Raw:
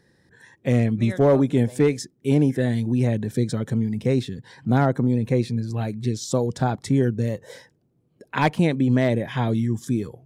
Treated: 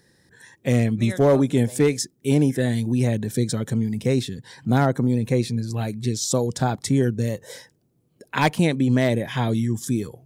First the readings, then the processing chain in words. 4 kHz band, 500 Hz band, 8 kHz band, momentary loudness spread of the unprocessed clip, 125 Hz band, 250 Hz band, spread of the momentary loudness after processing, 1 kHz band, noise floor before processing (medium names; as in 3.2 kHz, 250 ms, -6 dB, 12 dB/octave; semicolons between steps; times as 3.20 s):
+5.0 dB, 0.0 dB, +8.0 dB, 8 LU, 0.0 dB, 0.0 dB, 7 LU, +0.5 dB, -66 dBFS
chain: treble shelf 4.4 kHz +11 dB